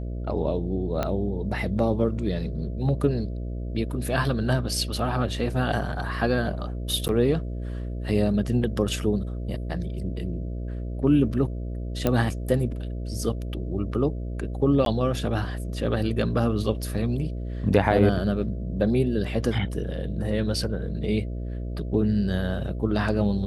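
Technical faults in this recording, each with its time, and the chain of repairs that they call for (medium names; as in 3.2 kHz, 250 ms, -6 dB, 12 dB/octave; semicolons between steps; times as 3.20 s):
buzz 60 Hz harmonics 11 -31 dBFS
1.03 s: pop -12 dBFS
7.08–7.09 s: dropout 9.9 ms
12.07 s: pop -10 dBFS
14.85–14.86 s: dropout 12 ms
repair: de-click; de-hum 60 Hz, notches 11; interpolate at 7.08 s, 9.9 ms; interpolate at 14.85 s, 12 ms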